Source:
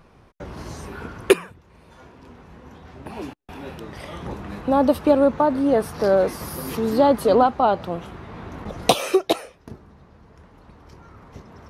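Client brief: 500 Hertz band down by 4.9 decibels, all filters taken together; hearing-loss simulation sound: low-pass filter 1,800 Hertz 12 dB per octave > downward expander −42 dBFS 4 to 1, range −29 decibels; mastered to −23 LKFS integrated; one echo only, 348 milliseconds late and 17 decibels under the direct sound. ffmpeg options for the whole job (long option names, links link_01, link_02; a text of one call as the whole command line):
ffmpeg -i in.wav -af "lowpass=1800,equalizer=frequency=500:width_type=o:gain=-6,aecho=1:1:348:0.141,agate=range=-29dB:threshold=-42dB:ratio=4,volume=1dB" out.wav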